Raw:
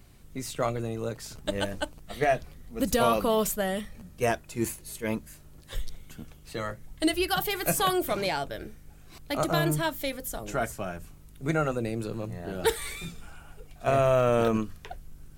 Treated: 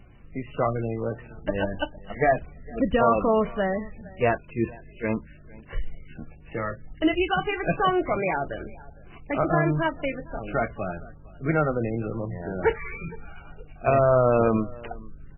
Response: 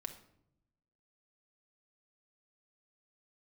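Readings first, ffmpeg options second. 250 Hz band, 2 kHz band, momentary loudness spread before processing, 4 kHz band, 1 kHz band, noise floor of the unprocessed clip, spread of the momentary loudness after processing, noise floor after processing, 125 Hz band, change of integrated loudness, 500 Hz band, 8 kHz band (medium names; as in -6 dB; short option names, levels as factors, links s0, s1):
+3.5 dB, +3.0 dB, 18 LU, -5.5 dB, +3.5 dB, -51 dBFS, 18 LU, -47 dBFS, +3.5 dB, +3.0 dB, +3.5 dB, under -40 dB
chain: -filter_complex "[0:a]asplit=2[s0][s1];[s1]aecho=0:1:459:0.075[s2];[s0][s2]amix=inputs=2:normalize=0,volume=1.58" -ar 16000 -c:a libmp3lame -b:a 8k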